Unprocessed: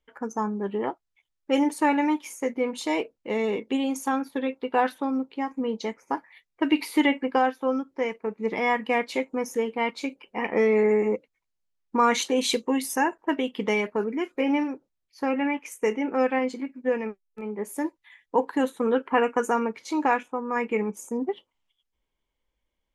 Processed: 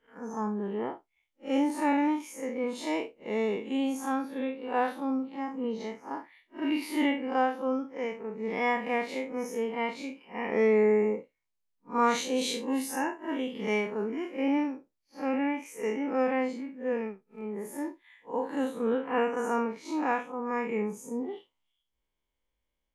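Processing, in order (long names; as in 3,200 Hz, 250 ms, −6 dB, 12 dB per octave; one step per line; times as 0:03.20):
spectrum smeared in time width 104 ms
level −2 dB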